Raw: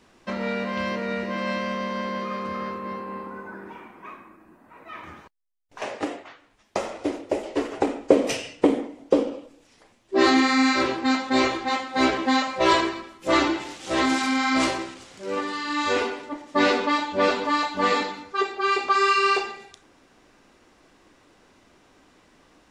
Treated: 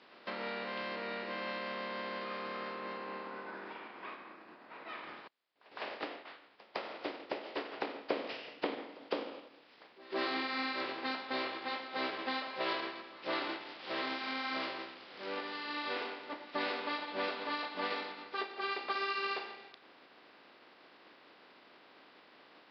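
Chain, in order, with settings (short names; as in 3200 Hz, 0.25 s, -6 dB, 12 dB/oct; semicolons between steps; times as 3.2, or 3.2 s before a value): spectral contrast lowered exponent 0.57; compressor 2:1, threshold -44 dBFS, peak gain reduction 18 dB; reverse echo 0.158 s -20.5 dB; downsampling 11025 Hz; HPF 290 Hz 12 dB/oct; air absorption 110 m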